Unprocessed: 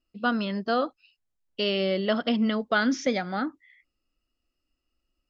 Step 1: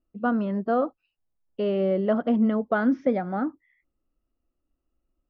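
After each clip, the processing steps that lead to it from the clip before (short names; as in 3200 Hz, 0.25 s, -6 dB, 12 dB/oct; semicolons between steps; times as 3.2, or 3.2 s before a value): LPF 1000 Hz 12 dB/oct; gain +3 dB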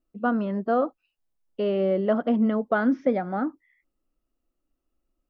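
bell 77 Hz -7.5 dB 1.7 oct; gain +1 dB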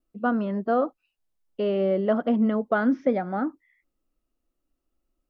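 vibrato 0.65 Hz 8.8 cents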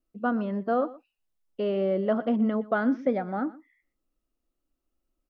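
echo 0.121 s -19.5 dB; gain -2.5 dB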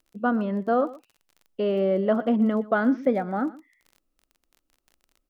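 crackle 29/s -44 dBFS; gain +3 dB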